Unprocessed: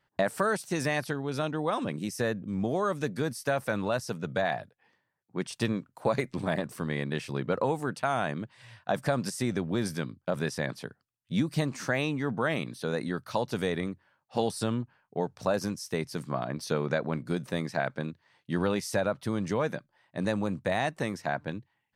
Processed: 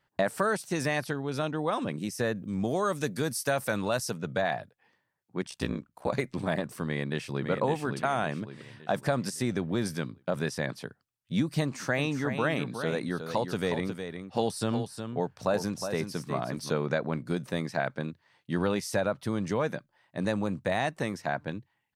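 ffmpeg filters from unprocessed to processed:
-filter_complex "[0:a]asettb=1/sr,asplit=3[a][b][c];[a]atrim=end=2.354[d];[b]atrim=start=2.35:end=4.11,asetpts=PTS-STARTPTS,afade=t=in:d=0.004:c=qsin,afade=t=out:st=1.756:d=0.004:c=qsin,highshelf=f=4.6k:g=10[e];[c]atrim=start=4.106[f];[d][e]acrossfade=d=0.004:c1=hsin:c2=qsin[g];[g][f]acrossfade=d=0.004:c1=qsin:c2=hsin,asplit=3[h][i][j];[h]afade=t=out:st=5.41:d=0.02[k];[i]aeval=exprs='val(0)*sin(2*PI*32*n/s)':c=same,afade=t=in:st=5.41:d=0.02,afade=t=out:st=6.11:d=0.02[l];[j]afade=t=in:st=6.11:d=0.02[m];[k][l][m]amix=inputs=3:normalize=0,asplit=2[n][o];[o]afade=t=in:st=6.86:d=0.01,afade=t=out:st=7.49:d=0.01,aecho=0:1:560|1120|1680|2240|2800:0.530884|0.238898|0.107504|0.0483768|0.0217696[p];[n][p]amix=inputs=2:normalize=0,asplit=3[q][r][s];[q]afade=t=out:st=11.97:d=0.02[t];[r]aecho=1:1:363:0.398,afade=t=in:st=11.97:d=0.02,afade=t=out:st=16.69:d=0.02[u];[s]afade=t=in:st=16.69:d=0.02[v];[t][u][v]amix=inputs=3:normalize=0"

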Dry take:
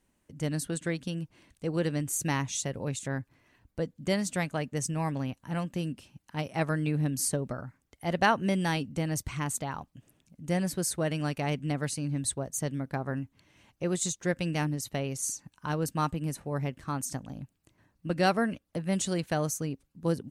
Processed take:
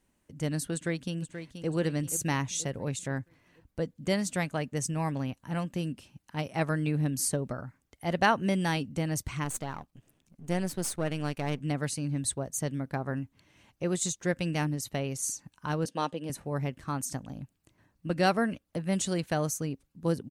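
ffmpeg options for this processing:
-filter_complex "[0:a]asplit=2[a][b];[b]afade=t=in:st=0.74:d=0.01,afade=t=out:st=1.68:d=0.01,aecho=0:1:480|960|1440|1920|2400:0.334965|0.150734|0.0678305|0.0305237|0.0137357[c];[a][c]amix=inputs=2:normalize=0,asettb=1/sr,asplit=3[d][e][f];[d]atrim=end=9.444[g];[e]atrim=start=9.44:end=11.61,asetpts=PTS-STARTPTS,afade=t=in:d=0.004:c=qsin,afade=t=out:st=2.166:d=0.004:c=qsin,aeval=exprs='if(lt(val(0),0),0.447*val(0),val(0))':c=same[h];[f]atrim=start=11.606[i];[g][h]acrossfade=d=0.004:c1=hsin:c2=qsin[j];[j][i]acrossfade=d=0.004:c1=qsin:c2=hsin,asettb=1/sr,asplit=3[k][l][m];[k]atrim=end=15.854[n];[l]atrim=start=15.85:end=16.3,asetpts=PTS-STARTPTS,afade=t=in:d=0.004:c=qsin,afade=t=out:st=0.446:d=0.004:c=qsin,highpass=270,equalizer=f=520:t=q:w=4:g=9,equalizer=f=1.3k:t=q:w=4:g=-6,equalizer=f=2.2k:t=q:w=4:g=-4,equalizer=f=3.3k:t=q:w=4:g=8,equalizer=f=7.7k:t=q:w=4:g=-9,lowpass=f=9.3k:w=0.5412,lowpass=f=9.3k:w=1.3066[o];[m]atrim=start=16.296[p];[n][o]acrossfade=d=0.004:c1=hsin:c2=qsin[q];[q][p]acrossfade=d=0.004:c1=qsin:c2=hsin"

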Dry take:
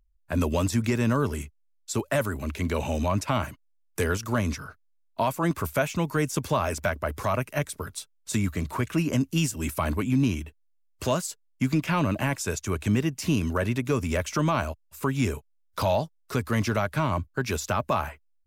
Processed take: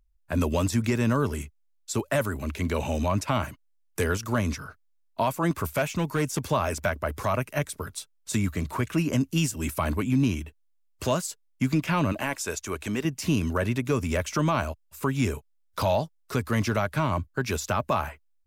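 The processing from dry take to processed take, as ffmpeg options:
-filter_complex "[0:a]asettb=1/sr,asplit=3[a][b][c];[a]atrim=end=5.754[d];[b]atrim=start=5.75:end=6.4,asetpts=PTS-STARTPTS,afade=t=in:d=0.004:c=qsin,afade=t=out:st=0.646:d=0.004:c=qsin,asoftclip=type=hard:threshold=-19dB[e];[c]atrim=start=6.396[f];[d][e]acrossfade=d=0.004:c1=hsin:c2=qsin[g];[g][f]acrossfade=d=0.004:c1=qsin:c2=hsin,asettb=1/sr,asplit=3[h][i][j];[h]atrim=end=12.124[k];[i]atrim=start=12.12:end=13.05,asetpts=PTS-STARTPTS,afade=t=in:d=0.004:c=qsin,afade=t=out:st=0.926:d=0.004:c=qsin,equalizer=f=120:w=0.88:g=-12.5[l];[j]atrim=start=13.046[m];[k][l]acrossfade=d=0.004:c1=hsin:c2=qsin[n];[n][m]acrossfade=d=0.004:c1=qsin:c2=hsin"

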